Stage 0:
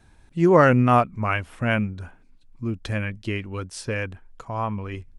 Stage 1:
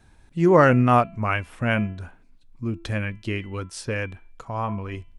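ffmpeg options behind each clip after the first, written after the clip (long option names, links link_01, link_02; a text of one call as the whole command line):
ffmpeg -i in.wav -af "bandreject=frequency=335.9:width_type=h:width=4,bandreject=frequency=671.8:width_type=h:width=4,bandreject=frequency=1007.7:width_type=h:width=4,bandreject=frequency=1343.6:width_type=h:width=4,bandreject=frequency=1679.5:width_type=h:width=4,bandreject=frequency=2015.4:width_type=h:width=4,bandreject=frequency=2351.3:width_type=h:width=4,bandreject=frequency=2687.2:width_type=h:width=4,bandreject=frequency=3023.1:width_type=h:width=4,bandreject=frequency=3359:width_type=h:width=4,bandreject=frequency=3694.9:width_type=h:width=4,bandreject=frequency=4030.8:width_type=h:width=4,bandreject=frequency=4366.7:width_type=h:width=4" out.wav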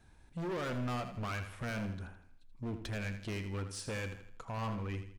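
ffmpeg -i in.wav -filter_complex "[0:a]alimiter=limit=-15dB:level=0:latency=1:release=125,volume=28.5dB,asoftclip=hard,volume=-28.5dB,asplit=2[link_01][link_02];[link_02]aecho=0:1:81|162|243|324:0.316|0.133|0.0558|0.0234[link_03];[link_01][link_03]amix=inputs=2:normalize=0,volume=-7dB" out.wav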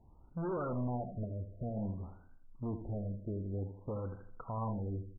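ffmpeg -i in.wav -af "afftfilt=real='re*lt(b*sr/1024,650*pow(1600/650,0.5+0.5*sin(2*PI*0.53*pts/sr)))':imag='im*lt(b*sr/1024,650*pow(1600/650,0.5+0.5*sin(2*PI*0.53*pts/sr)))':win_size=1024:overlap=0.75,volume=1dB" out.wav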